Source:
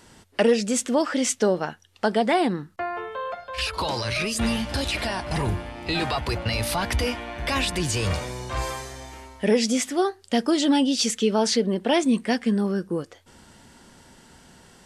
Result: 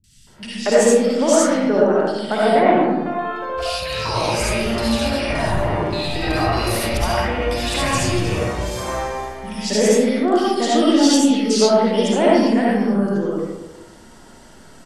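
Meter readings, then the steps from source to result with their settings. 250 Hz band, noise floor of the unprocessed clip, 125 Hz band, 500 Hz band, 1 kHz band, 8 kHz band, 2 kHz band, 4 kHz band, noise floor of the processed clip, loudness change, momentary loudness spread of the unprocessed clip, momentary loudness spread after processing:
+6.0 dB, -54 dBFS, +4.5 dB, +8.0 dB, +7.5 dB, +4.5 dB, +4.5 dB, +3.5 dB, -44 dBFS, +6.5 dB, 10 LU, 10 LU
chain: three bands offset in time lows, highs, mids 40/270 ms, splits 170/2700 Hz; digital reverb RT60 1.2 s, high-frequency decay 0.35×, pre-delay 30 ms, DRR -6 dB

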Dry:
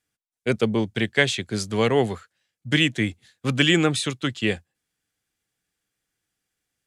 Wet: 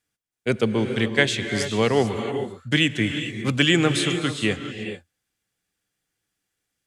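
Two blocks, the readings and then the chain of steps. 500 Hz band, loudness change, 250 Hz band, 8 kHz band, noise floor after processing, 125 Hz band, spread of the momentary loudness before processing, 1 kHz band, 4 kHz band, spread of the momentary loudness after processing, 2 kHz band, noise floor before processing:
+1.0 dB, +0.5 dB, +1.0 dB, +1.0 dB, -81 dBFS, +1.0 dB, 9 LU, +1.0 dB, +1.0 dB, 11 LU, +0.5 dB, under -85 dBFS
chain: non-linear reverb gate 0.46 s rising, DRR 7 dB

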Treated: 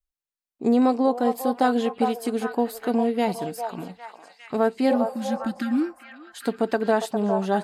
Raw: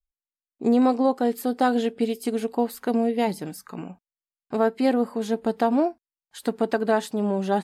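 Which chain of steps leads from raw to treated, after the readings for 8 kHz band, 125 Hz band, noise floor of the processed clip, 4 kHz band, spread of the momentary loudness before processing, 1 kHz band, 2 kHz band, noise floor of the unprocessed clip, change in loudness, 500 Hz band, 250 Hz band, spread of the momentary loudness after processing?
0.0 dB, 0.0 dB, under -85 dBFS, +0.5 dB, 11 LU, +1.0 dB, +1.0 dB, under -85 dBFS, 0.0 dB, 0.0 dB, 0.0 dB, 11 LU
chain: spectral repair 4.93–5.9, 350–1200 Hz both; on a send: delay with a stepping band-pass 0.404 s, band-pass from 800 Hz, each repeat 0.7 oct, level -3 dB

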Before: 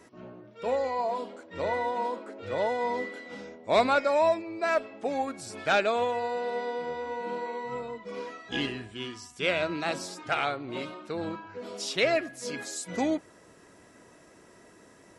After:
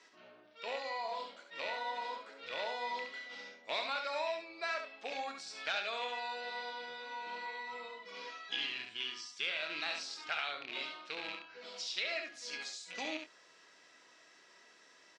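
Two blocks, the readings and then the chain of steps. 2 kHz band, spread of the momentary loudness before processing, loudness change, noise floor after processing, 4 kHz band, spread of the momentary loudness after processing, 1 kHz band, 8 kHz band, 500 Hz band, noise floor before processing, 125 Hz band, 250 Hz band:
-5.5 dB, 14 LU, -9.5 dB, -63 dBFS, -1.5 dB, 10 LU, -10.5 dB, -9.0 dB, -15.5 dB, -56 dBFS, under -25 dB, -19.5 dB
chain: rattling part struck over -38 dBFS, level -29 dBFS; HPF 100 Hz; differentiator; doubler 26 ms -11 dB; compressor 5:1, threshold -42 dBFS, peak gain reduction 10 dB; LPF 4700 Hz 24 dB/oct; on a send: echo 70 ms -6 dB; on the sum: gain +8.5 dB

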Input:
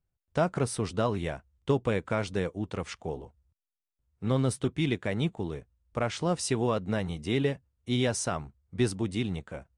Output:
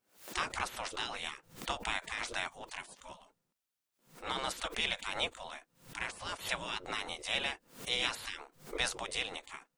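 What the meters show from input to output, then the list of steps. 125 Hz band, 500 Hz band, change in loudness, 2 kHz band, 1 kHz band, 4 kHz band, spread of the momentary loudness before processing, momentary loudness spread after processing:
-24.0 dB, -14.5 dB, -6.5 dB, +2.0 dB, -3.5 dB, +3.5 dB, 10 LU, 13 LU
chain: spectral gate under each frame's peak -20 dB weak; backwards sustainer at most 140 dB/s; gain +6.5 dB

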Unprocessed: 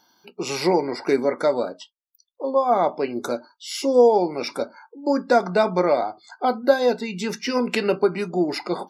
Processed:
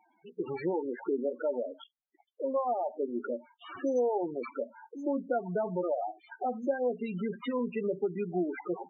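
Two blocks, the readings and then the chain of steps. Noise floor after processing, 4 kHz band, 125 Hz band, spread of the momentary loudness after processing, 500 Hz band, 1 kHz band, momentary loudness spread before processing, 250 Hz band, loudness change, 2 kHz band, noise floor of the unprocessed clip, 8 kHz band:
-77 dBFS, under -20 dB, -8.5 dB, 9 LU, -11.0 dB, -12.5 dB, 12 LU, -9.0 dB, -11.0 dB, -15.0 dB, -74 dBFS, under -25 dB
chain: in parallel at +1 dB: limiter -14.5 dBFS, peak gain reduction 9.5 dB; on the sum: compressor 2:1, threshold -25 dBFS, peak gain reduction 10 dB; sample-rate reducer 6600 Hz, jitter 0%; loudest bins only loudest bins 8; gain -7.5 dB

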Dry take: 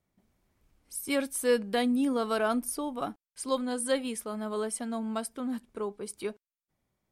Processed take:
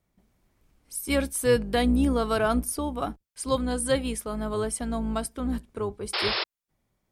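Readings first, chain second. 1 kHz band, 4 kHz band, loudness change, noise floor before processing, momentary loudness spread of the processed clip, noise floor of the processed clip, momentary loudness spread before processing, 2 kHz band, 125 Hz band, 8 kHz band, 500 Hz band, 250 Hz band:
+4.0 dB, +7.5 dB, +4.0 dB, under -85 dBFS, 10 LU, -83 dBFS, 11 LU, +5.0 dB, n/a, +3.5 dB, +3.5 dB, +3.5 dB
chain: octaver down 2 oct, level -3 dB; painted sound noise, 6.13–6.44, 330–5400 Hz -31 dBFS; gain +3.5 dB

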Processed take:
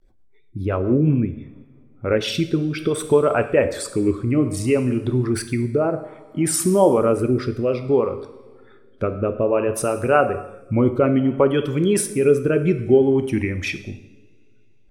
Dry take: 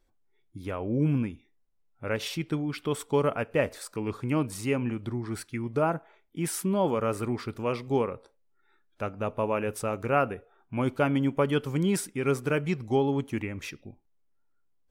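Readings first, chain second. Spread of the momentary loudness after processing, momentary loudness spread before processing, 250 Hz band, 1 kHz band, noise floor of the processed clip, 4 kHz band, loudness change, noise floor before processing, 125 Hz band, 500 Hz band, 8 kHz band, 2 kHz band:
10 LU, 10 LU, +9.0 dB, +5.5 dB, -50 dBFS, +7.5 dB, +9.0 dB, -68 dBFS, +8.0 dB, +10.5 dB, +11.0 dB, +6.0 dB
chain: formant sharpening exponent 1.5; dynamic EQ 180 Hz, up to -4 dB, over -41 dBFS, Q 2.2; in parallel at -1 dB: compressor, threshold -34 dBFS, peak gain reduction 14.5 dB; on the sum: two-slope reverb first 0.86 s, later 2.8 s, from -20 dB, DRR 8 dB; vibrato 0.43 Hz 69 cents; rotary speaker horn 8 Hz, later 0.6 Hz, at 0.54; gain +9 dB

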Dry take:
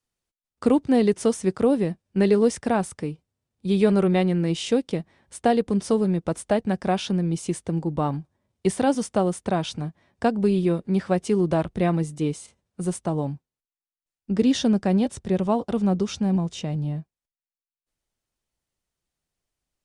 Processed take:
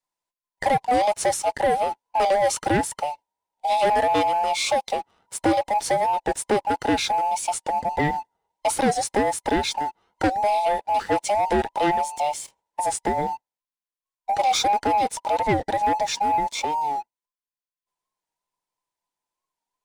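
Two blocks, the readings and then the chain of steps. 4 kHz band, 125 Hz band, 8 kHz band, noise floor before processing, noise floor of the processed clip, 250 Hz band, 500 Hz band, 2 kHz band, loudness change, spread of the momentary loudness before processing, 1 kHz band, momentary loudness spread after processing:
+5.5 dB, -10.5 dB, +7.0 dB, under -85 dBFS, under -85 dBFS, -8.0 dB, -0.5 dB, +7.0 dB, +0.5 dB, 11 LU, +11.0 dB, 8 LU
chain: band inversion scrambler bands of 1000 Hz; dynamic EQ 720 Hz, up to -7 dB, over -32 dBFS, Q 0.86; sample leveller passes 2; record warp 45 rpm, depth 100 cents

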